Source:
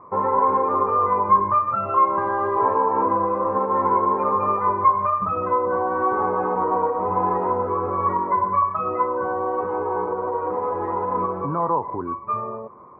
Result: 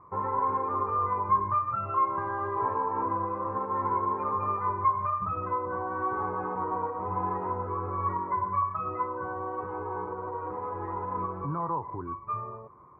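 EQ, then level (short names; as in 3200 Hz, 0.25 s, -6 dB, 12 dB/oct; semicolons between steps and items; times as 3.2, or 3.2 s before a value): bell 220 Hz -11 dB 0.44 oct; bell 560 Hz -12.5 dB 1.7 oct; high shelf 2100 Hz -11.5 dB; 0.0 dB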